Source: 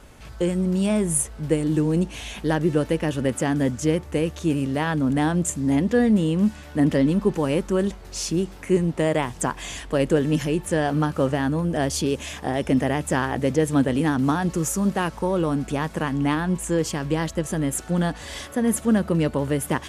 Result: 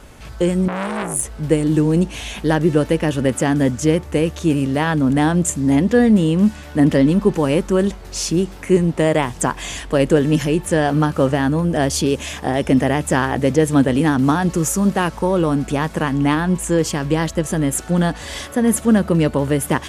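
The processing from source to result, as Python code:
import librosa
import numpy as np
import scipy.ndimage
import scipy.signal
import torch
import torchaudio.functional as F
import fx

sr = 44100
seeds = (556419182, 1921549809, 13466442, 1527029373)

y = fx.transformer_sat(x, sr, knee_hz=2700.0, at=(0.68, 1.23))
y = y * 10.0 ** (5.5 / 20.0)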